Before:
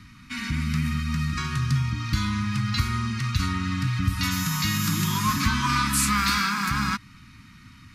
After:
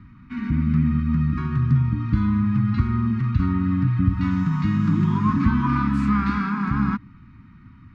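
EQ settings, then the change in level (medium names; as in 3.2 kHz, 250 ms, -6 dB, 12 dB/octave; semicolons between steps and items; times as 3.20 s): Bessel low-pass 910 Hz, order 2; dynamic bell 250 Hz, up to +6 dB, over -41 dBFS, Q 1; +3.0 dB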